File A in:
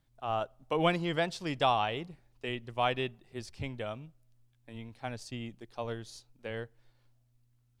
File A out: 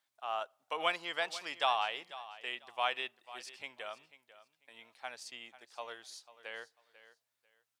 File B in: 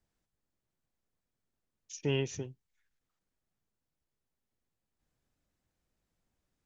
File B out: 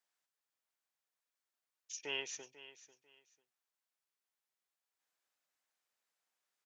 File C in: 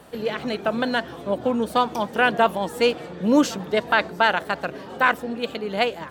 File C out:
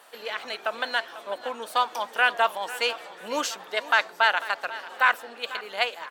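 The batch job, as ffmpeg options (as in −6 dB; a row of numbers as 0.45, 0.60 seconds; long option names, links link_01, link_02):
-af "highpass=890,aecho=1:1:494|988:0.158|0.0365"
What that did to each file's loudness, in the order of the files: −4.0, −7.0, −3.5 LU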